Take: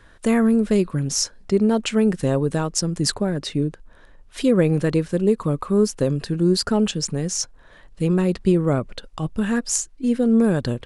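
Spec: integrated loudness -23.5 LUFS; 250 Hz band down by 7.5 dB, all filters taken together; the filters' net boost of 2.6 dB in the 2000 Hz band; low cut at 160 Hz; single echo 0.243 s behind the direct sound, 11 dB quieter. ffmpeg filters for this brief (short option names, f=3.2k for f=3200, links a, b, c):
-af "highpass=160,equalizer=f=250:t=o:g=-8.5,equalizer=f=2k:t=o:g=3.5,aecho=1:1:243:0.282,volume=1.5dB"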